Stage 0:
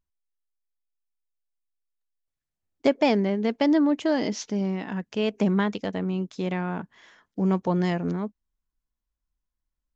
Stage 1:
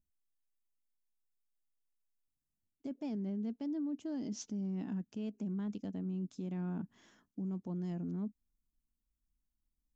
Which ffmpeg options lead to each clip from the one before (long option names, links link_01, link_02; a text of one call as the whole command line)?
ffmpeg -i in.wav -af "areverse,acompressor=threshold=-30dB:ratio=10,areverse,equalizer=frequency=250:width_type=o:width=1:gain=7,equalizer=frequency=500:width_type=o:width=1:gain=-8,equalizer=frequency=1000:width_type=o:width=1:gain=-7,equalizer=frequency=2000:width_type=o:width=1:gain=-12,equalizer=frequency=4000:width_type=o:width=1:gain=-8,alimiter=level_in=7.5dB:limit=-24dB:level=0:latency=1:release=126,volume=-7.5dB,volume=-1dB" out.wav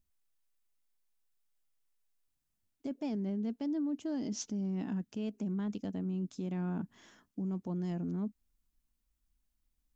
ffmpeg -i in.wav -af "equalizer=frequency=200:width_type=o:width=1.9:gain=-3,volume=5.5dB" out.wav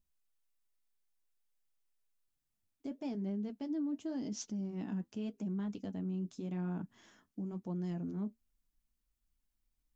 ffmpeg -i in.wav -af "flanger=delay=4.8:depth=6.4:regen=-53:speed=0.9:shape=triangular,volume=1dB" out.wav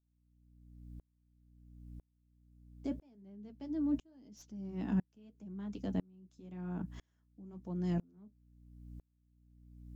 ffmpeg -i in.wav -filter_complex "[0:a]acrossover=split=140|560|2200[link_01][link_02][link_03][link_04];[link_04]aeval=exprs='clip(val(0),-1,0.0075)':channel_layout=same[link_05];[link_01][link_02][link_03][link_05]amix=inputs=4:normalize=0,aeval=exprs='val(0)+0.00224*(sin(2*PI*60*n/s)+sin(2*PI*2*60*n/s)/2+sin(2*PI*3*60*n/s)/3+sin(2*PI*4*60*n/s)/4+sin(2*PI*5*60*n/s)/5)':channel_layout=same,aeval=exprs='val(0)*pow(10,-35*if(lt(mod(-1*n/s,1),2*abs(-1)/1000),1-mod(-1*n/s,1)/(2*abs(-1)/1000),(mod(-1*n/s,1)-2*abs(-1)/1000)/(1-2*abs(-1)/1000))/20)':channel_layout=same,volume=8dB" out.wav